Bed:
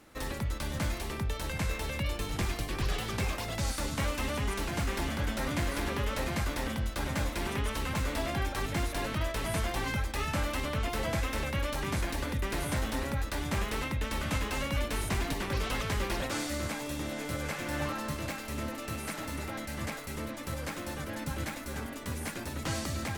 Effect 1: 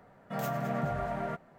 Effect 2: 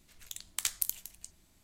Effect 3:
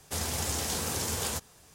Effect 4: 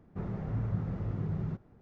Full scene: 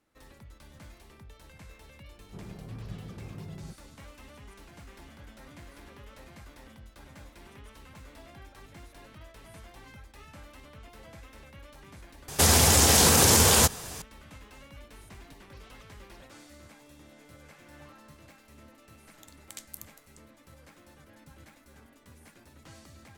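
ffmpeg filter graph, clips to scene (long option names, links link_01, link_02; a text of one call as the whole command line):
ffmpeg -i bed.wav -i cue0.wav -i cue1.wav -i cue2.wav -i cue3.wav -filter_complex "[0:a]volume=-17.5dB[link_01];[4:a]equalizer=frequency=340:width=0.53:gain=5[link_02];[3:a]alimiter=level_in=25.5dB:limit=-1dB:release=50:level=0:latency=1[link_03];[link_01]asplit=2[link_04][link_05];[link_04]atrim=end=12.284[link_06];[link_03]atrim=end=1.74,asetpts=PTS-STARTPTS,volume=-8.5dB[link_07];[link_05]atrim=start=14.016[link_08];[link_02]atrim=end=1.81,asetpts=PTS-STARTPTS,volume=-11dB,afade=type=in:duration=0.004:curve=hsin,afade=type=out:start_time=1.806:duration=0.004:curve=hsin,adelay=2170[link_09];[2:a]atrim=end=1.63,asetpts=PTS-STARTPTS,volume=-12dB,afade=type=in:duration=0.004:curve=hsin,afade=type=out:start_time=1.626:duration=0.004:curve=hsin,adelay=834372S[link_10];[link_06][link_07]acrossfade=duration=0.004:curve1=hsin:curve2=hsin[link_11];[link_11][link_08]acrossfade=duration=0.004:curve1=hsin:curve2=hsin[link_12];[link_12][link_09][link_10]amix=inputs=3:normalize=0" out.wav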